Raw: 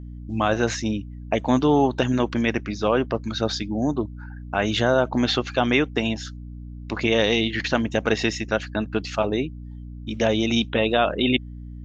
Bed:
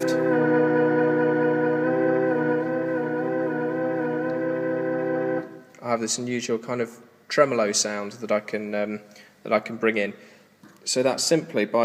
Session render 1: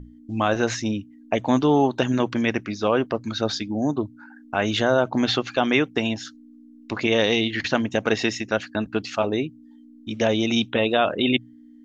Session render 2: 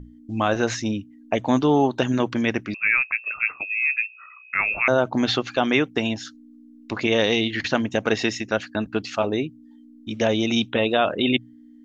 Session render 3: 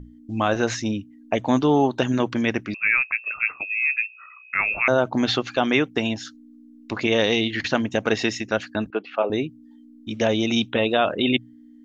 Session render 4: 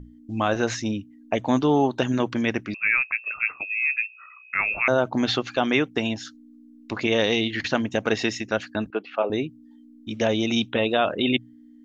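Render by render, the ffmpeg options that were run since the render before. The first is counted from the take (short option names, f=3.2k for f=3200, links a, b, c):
-af "bandreject=f=60:t=h:w=6,bandreject=f=120:t=h:w=6,bandreject=f=180:t=h:w=6"
-filter_complex "[0:a]asettb=1/sr,asplit=3[a][b][c];[a]atrim=end=2.744[d];[b]atrim=start=2.74:end=4.88,asetpts=PTS-STARTPTS,afade=t=in:d=0.004:c=qsin,afade=t=out:st=2.136:d=0.004:c=qsin,lowpass=f=2.4k:t=q:w=0.5098,lowpass=f=2.4k:t=q:w=0.6013,lowpass=f=2.4k:t=q:w=0.9,lowpass=f=2.4k:t=q:w=2.563,afreqshift=-2800[e];[c]atrim=start=4.876[f];[d][e]acrossfade=d=0.004:c1=hsin:c2=qsin[g];[g][f]acrossfade=d=0.004:c1=qsin:c2=hsin"
-filter_complex "[0:a]asettb=1/sr,asplit=3[a][b][c];[a]atrim=end=8.904[d];[b]atrim=start=8.9:end=9.3,asetpts=PTS-STARTPTS,afade=t=in:d=0.004:c=qsin,afade=t=out:st=0.396:d=0.004:c=qsin,highpass=f=250:w=0.5412,highpass=f=250:w=1.3066,equalizer=f=270:t=q:w=4:g=-8,equalizer=f=510:t=q:w=4:g=4,equalizer=f=1.9k:t=q:w=4:g=-5,lowpass=f=2.7k:w=0.5412,lowpass=f=2.7k:w=1.3066[e];[c]atrim=start=9.296[f];[d][e]acrossfade=d=0.004:c1=hsin:c2=qsin[g];[g][f]acrossfade=d=0.004:c1=qsin:c2=hsin"
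-af "volume=-1.5dB"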